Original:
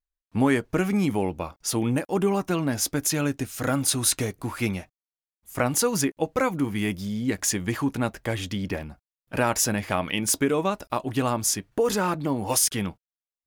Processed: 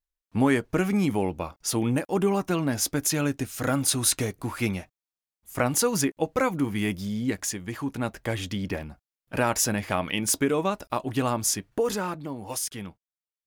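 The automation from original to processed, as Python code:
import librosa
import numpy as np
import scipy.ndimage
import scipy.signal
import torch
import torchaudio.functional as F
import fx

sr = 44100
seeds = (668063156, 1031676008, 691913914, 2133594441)

y = fx.gain(x, sr, db=fx.line((7.25, -0.5), (7.61, -8.0), (8.21, -1.0), (11.73, -1.0), (12.32, -9.0)))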